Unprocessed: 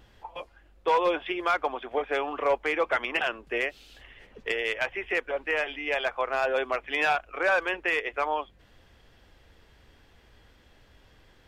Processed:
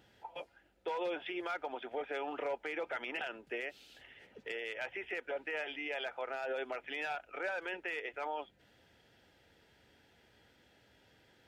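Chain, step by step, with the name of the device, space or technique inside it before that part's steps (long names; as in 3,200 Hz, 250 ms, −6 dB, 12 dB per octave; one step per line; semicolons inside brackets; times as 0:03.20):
PA system with an anti-feedback notch (high-pass filter 120 Hz 12 dB per octave; Butterworth band-reject 1,100 Hz, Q 5.1; brickwall limiter −24 dBFS, peak gain reduction 10.5 dB)
level −5.5 dB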